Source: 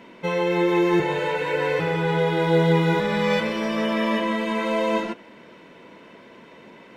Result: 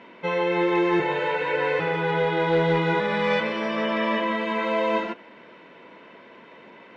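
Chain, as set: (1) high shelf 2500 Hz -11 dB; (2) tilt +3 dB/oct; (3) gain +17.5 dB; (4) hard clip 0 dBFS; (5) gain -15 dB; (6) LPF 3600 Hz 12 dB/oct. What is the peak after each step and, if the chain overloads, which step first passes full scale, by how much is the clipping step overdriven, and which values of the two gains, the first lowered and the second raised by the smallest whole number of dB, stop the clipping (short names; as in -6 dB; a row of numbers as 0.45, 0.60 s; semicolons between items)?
-8.5, -12.0, +5.5, 0.0, -15.0, -14.5 dBFS; step 3, 5.5 dB; step 3 +11.5 dB, step 5 -9 dB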